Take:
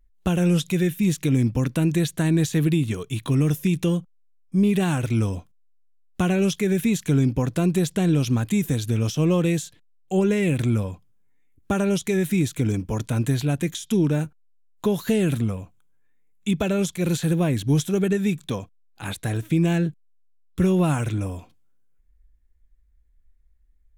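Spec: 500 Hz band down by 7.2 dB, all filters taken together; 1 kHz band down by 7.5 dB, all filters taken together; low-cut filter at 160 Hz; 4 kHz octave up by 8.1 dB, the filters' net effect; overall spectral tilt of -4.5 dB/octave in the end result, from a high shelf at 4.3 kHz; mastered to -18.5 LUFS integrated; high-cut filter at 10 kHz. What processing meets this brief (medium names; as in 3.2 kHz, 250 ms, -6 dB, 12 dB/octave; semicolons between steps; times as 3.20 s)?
high-pass 160 Hz; low-pass 10 kHz; peaking EQ 500 Hz -9 dB; peaking EQ 1 kHz -8 dB; peaking EQ 4 kHz +8 dB; treble shelf 4.3 kHz +5 dB; trim +7 dB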